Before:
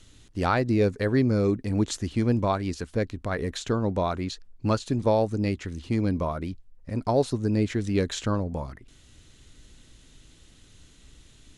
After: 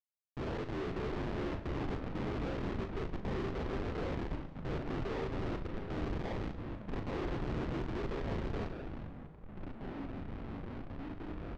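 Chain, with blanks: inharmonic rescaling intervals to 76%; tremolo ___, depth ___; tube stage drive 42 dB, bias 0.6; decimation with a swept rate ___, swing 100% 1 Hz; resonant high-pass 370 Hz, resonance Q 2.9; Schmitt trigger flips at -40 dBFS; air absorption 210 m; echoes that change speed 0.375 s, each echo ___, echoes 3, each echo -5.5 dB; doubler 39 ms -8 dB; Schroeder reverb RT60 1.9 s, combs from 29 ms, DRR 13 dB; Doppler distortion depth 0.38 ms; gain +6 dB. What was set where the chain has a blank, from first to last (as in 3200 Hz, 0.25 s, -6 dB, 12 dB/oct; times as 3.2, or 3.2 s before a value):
2.2 Hz, 50%, 22×, -5 st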